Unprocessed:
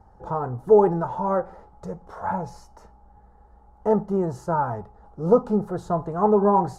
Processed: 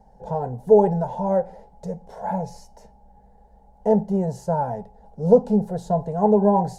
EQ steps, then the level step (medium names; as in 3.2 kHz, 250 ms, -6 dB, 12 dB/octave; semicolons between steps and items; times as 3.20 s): static phaser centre 330 Hz, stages 6; +4.0 dB